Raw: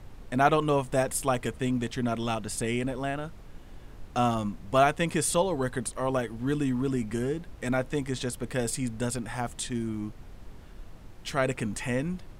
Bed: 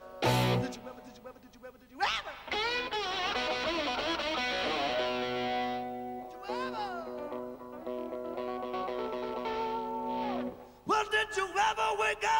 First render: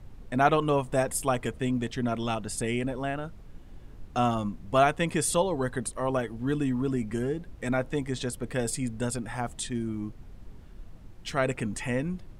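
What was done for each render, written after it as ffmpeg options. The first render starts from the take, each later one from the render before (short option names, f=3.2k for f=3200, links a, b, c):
-af "afftdn=nr=6:nf=-47"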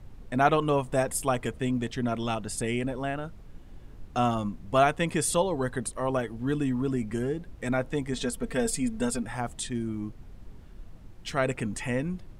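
-filter_complex "[0:a]asettb=1/sr,asplit=3[a][b][c];[a]atrim=end=8.124[d];[b]atrim=start=8.12:end=9.23,asetpts=PTS-STARTPTS,afade=t=in:d=0.004:c=qsin,afade=t=out:st=1.106:d=0.004:c=qsin,aecho=1:1:4.4:0.67,atrim=end_sample=48951[e];[c]atrim=start=9.226[f];[d][e]acrossfade=d=0.004:c1=hsin:c2=qsin[g];[g][f]acrossfade=d=0.004:c1=qsin:c2=hsin"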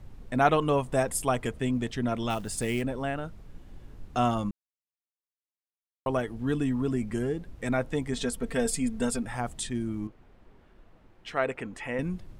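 -filter_complex "[0:a]asplit=3[a][b][c];[a]afade=t=out:st=2.29:d=0.02[d];[b]acrusher=bits=5:mode=log:mix=0:aa=0.000001,afade=t=in:st=2.29:d=0.02,afade=t=out:st=2.81:d=0.02[e];[c]afade=t=in:st=2.81:d=0.02[f];[d][e][f]amix=inputs=3:normalize=0,asettb=1/sr,asplit=3[g][h][i];[g]atrim=end=10.074[j];[h]atrim=start=10.07:end=11.99,asetpts=PTS-STARTPTS,afade=t=in:d=0.004:c=qsin,afade=t=out:st=1.916:d=0.004:c=qsin,bass=f=250:g=-12,treble=f=4k:g=-13[k];[i]atrim=start=11.986[l];[j][k]acrossfade=d=0.004:c1=hsin:c2=qsin[m];[m][l]acrossfade=d=0.004:c1=qsin:c2=hsin,asplit=3[n][o][p];[n]atrim=end=4.51,asetpts=PTS-STARTPTS,afade=t=out:st=4.506:d=0.004:c=hsin[q];[o]atrim=start=4.51:end=6.06,asetpts=PTS-STARTPTS,volume=0[r];[p]atrim=start=6.06,asetpts=PTS-STARTPTS,afade=t=in:d=0.004:c=hsin[s];[q][r][s]concat=n=3:v=0:a=1"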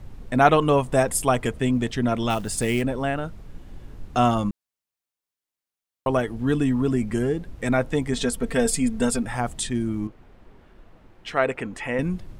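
-af "volume=6dB"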